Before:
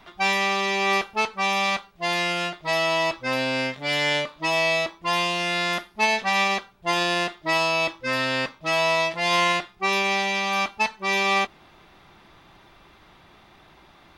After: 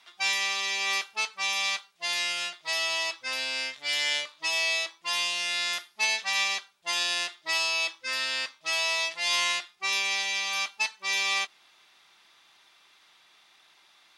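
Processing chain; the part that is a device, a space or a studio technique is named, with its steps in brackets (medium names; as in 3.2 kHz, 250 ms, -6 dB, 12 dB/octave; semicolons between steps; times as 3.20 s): piezo pickup straight into a mixer (low-pass 8.5 kHz 12 dB/octave; differentiator); trim +5.5 dB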